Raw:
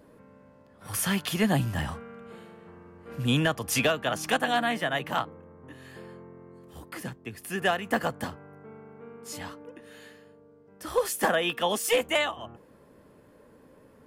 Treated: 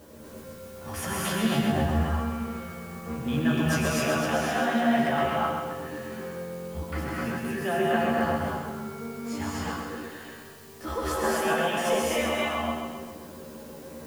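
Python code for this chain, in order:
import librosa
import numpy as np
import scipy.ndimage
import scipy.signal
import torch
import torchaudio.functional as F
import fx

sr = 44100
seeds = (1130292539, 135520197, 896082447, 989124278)

p1 = fx.lowpass(x, sr, hz=1700.0, slope=6)
p2 = fx.over_compress(p1, sr, threshold_db=-39.0, ratio=-1.0)
p3 = p1 + F.gain(torch.from_numpy(p2), 2.0).numpy()
p4 = fx.comb_fb(p3, sr, f0_hz=76.0, decay_s=0.22, harmonics='odd', damping=0.0, mix_pct=70)
p5 = fx.quant_dither(p4, sr, seeds[0], bits=10, dither='triangular')
p6 = fx.doubler(p5, sr, ms=13.0, db=-3.5)
p7 = p6 + fx.echo_feedback(p6, sr, ms=132, feedback_pct=54, wet_db=-5.5, dry=0)
p8 = fx.rev_gated(p7, sr, seeds[1], gate_ms=290, shape='rising', drr_db=-4.0)
y = F.gain(torch.from_numpy(p8), -1.0).numpy()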